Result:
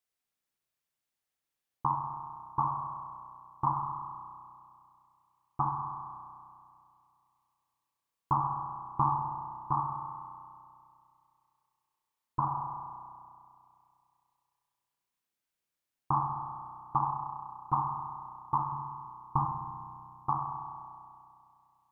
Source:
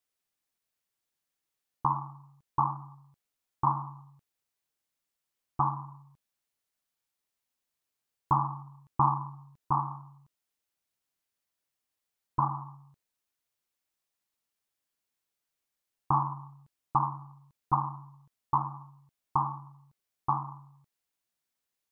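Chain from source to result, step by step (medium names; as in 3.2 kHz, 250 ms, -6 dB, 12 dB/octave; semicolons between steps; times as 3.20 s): 18.72–19.45 s: bass shelf 190 Hz +10.5 dB; spring tank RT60 2.4 s, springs 32 ms, chirp 70 ms, DRR 2.5 dB; trim -3 dB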